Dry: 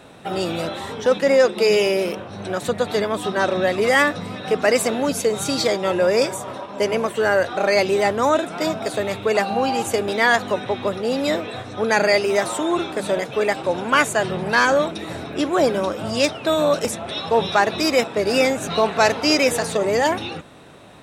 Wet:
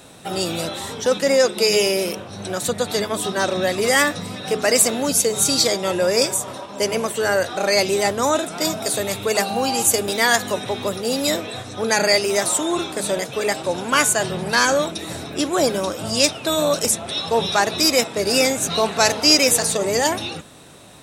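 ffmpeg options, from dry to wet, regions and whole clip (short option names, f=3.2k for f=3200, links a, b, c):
-filter_complex "[0:a]asettb=1/sr,asplit=3[a][b][c];[a]atrim=end=8.654[d];[b]atrim=start=8.65:end=11.37,asetpts=PTS-STARTPTS,afade=t=in:d=0.004:c=qsin,afade=t=out:st=2.716:d=0.004:c=qsin,highshelf=f=10k:g=8,acompressor=mode=upward:threshold=-25dB:ratio=2.5:attack=3.2:release=140:knee=2.83:detection=peak[e];[c]atrim=start=11.366[f];[d][e]acrossfade=d=0.004:c1=hsin:c2=qsin[g];[g][f]acrossfade=d=0.004:c1=qsin:c2=hsin,bass=f=250:g=2,treble=f=4k:g=13,bandreject=f=212.1:t=h:w=4,bandreject=f=424.2:t=h:w=4,bandreject=f=636.3:t=h:w=4,bandreject=f=848.4:t=h:w=4,bandreject=f=1.0605k:t=h:w=4,bandreject=f=1.2726k:t=h:w=4,bandreject=f=1.4847k:t=h:w=4,bandreject=f=1.6968k:t=h:w=4,bandreject=f=1.9089k:t=h:w=4,bandreject=f=2.121k:t=h:w=4,bandreject=f=2.3331k:t=h:w=4,bandreject=f=2.5452k:t=h:w=4,bandreject=f=2.7573k:t=h:w=4,bandreject=f=2.9694k:t=h:w=4,bandreject=f=3.1815k:t=h:w=4,bandreject=f=3.3936k:t=h:w=4,bandreject=f=3.6057k:t=h:w=4,bandreject=f=3.8178k:t=h:w=4,volume=-1.5dB"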